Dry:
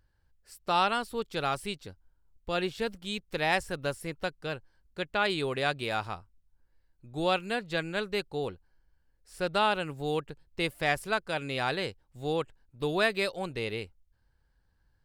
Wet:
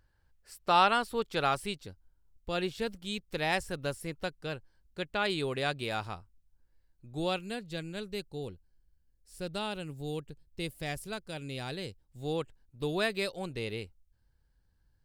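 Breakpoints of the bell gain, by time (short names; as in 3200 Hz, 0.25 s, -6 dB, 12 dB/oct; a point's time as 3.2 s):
bell 1200 Hz 2.9 oct
1.45 s +2.5 dB
1.86 s -4 dB
7.1 s -4 dB
7.69 s -14 dB
11.89 s -14 dB
12.33 s -6 dB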